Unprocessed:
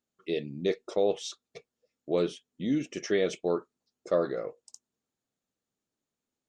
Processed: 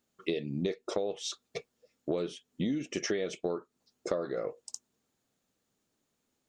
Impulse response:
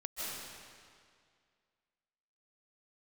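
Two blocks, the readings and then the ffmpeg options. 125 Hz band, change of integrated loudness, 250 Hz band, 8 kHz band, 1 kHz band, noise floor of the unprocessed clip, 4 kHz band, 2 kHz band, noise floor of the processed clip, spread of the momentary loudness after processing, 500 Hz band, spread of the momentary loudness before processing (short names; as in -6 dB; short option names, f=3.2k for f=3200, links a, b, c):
0.0 dB, -4.5 dB, -2.5 dB, +2.5 dB, -4.0 dB, under -85 dBFS, 0.0 dB, -2.5 dB, -81 dBFS, 12 LU, -5.0 dB, 8 LU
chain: -af "acompressor=threshold=-37dB:ratio=16,volume=8.5dB"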